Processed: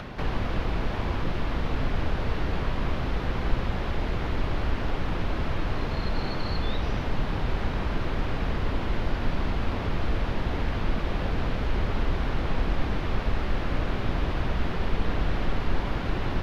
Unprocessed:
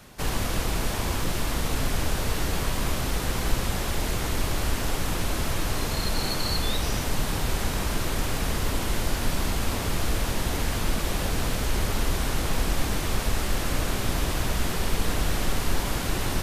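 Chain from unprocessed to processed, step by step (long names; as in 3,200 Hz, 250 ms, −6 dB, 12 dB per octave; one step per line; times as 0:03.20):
upward compression, threshold −25 dBFS
high-frequency loss of the air 310 metres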